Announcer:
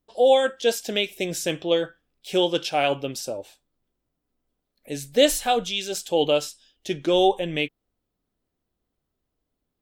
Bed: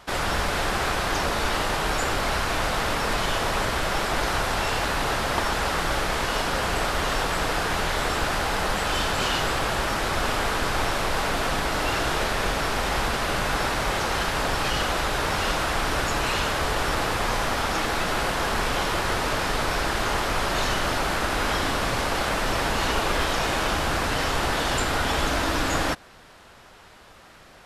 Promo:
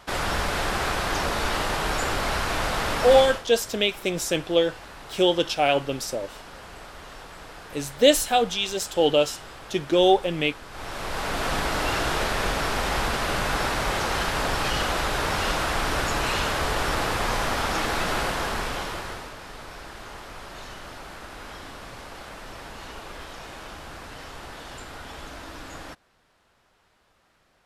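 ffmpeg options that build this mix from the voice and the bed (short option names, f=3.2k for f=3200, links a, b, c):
-filter_complex "[0:a]adelay=2850,volume=1dB[a];[1:a]volume=16dB,afade=t=out:st=3.17:d=0.26:silence=0.149624,afade=t=in:st=10.69:d=0.87:silence=0.141254,afade=t=out:st=18.15:d=1.18:silence=0.177828[b];[a][b]amix=inputs=2:normalize=0"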